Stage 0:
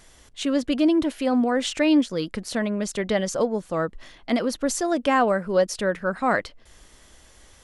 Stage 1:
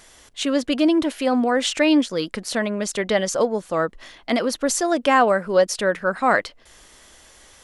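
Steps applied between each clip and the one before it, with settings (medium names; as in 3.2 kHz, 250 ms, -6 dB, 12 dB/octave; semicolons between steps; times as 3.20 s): bass shelf 240 Hz -9.5 dB; trim +5 dB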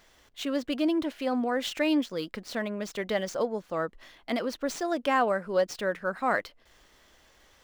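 median filter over 5 samples; trim -8.5 dB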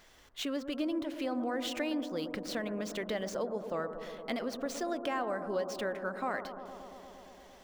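compression 3:1, threshold -34 dBFS, peak gain reduction 11 dB; on a send: bucket-brigade echo 115 ms, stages 1024, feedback 84%, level -10.5 dB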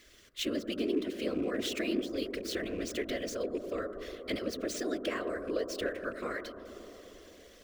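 rattle on loud lows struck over -42 dBFS, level -43 dBFS; whisper effect; static phaser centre 350 Hz, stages 4; trim +3.5 dB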